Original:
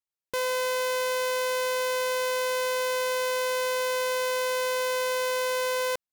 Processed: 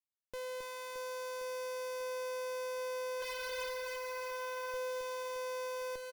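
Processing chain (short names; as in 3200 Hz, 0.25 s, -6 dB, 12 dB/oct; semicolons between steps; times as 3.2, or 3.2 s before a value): 3.23–3.66 spectral repair 580–2600 Hz; 3.22–4.74 tilt +3.5 dB/oct; tube stage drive 34 dB, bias 0.75; on a send: reverse bouncing-ball echo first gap 0.27 s, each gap 1.3×, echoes 5; on the sum: gain -5.5 dB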